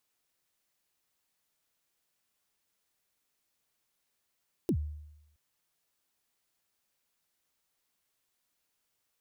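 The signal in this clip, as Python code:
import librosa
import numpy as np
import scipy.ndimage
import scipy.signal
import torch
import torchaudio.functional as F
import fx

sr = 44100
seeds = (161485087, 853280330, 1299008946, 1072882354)

y = fx.drum_kick(sr, seeds[0], length_s=0.67, level_db=-23, start_hz=410.0, end_hz=75.0, sweep_ms=75.0, decay_s=0.89, click=True)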